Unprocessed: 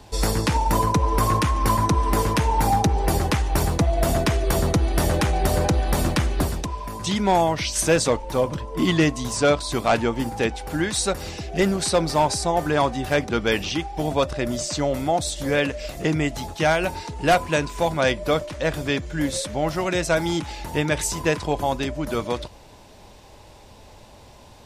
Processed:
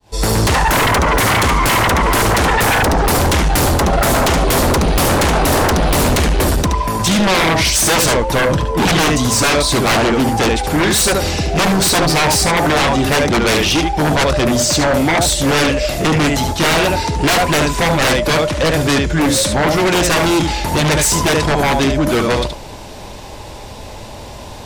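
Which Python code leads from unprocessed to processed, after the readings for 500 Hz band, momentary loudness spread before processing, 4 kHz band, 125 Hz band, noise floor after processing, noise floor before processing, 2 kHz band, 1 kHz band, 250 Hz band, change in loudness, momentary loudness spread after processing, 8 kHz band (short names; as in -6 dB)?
+7.0 dB, 6 LU, +12.5 dB, +7.5 dB, -32 dBFS, -47 dBFS, +11.5 dB, +8.0 dB, +8.5 dB, +9.0 dB, 5 LU, +12.0 dB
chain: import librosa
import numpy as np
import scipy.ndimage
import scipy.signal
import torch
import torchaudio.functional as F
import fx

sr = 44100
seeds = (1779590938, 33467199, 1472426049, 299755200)

y = fx.fade_in_head(x, sr, length_s=0.51)
y = y + 10.0 ** (-8.0 / 20.0) * np.pad(y, (int(73 * sr / 1000.0), 0))[:len(y)]
y = fx.fold_sine(y, sr, drive_db=13, ceiling_db=-8.0)
y = y * librosa.db_to_amplitude(-2.0)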